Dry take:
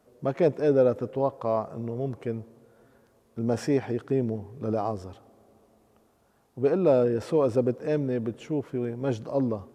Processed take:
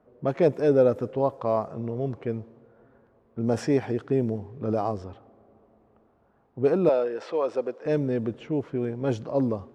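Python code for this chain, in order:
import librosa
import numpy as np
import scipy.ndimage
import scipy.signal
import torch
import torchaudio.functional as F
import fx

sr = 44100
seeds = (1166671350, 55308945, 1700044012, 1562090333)

y = fx.env_lowpass(x, sr, base_hz=1600.0, full_db=-21.0)
y = fx.bandpass_edges(y, sr, low_hz=550.0, high_hz=4900.0, at=(6.89, 7.86))
y = y * librosa.db_to_amplitude(1.5)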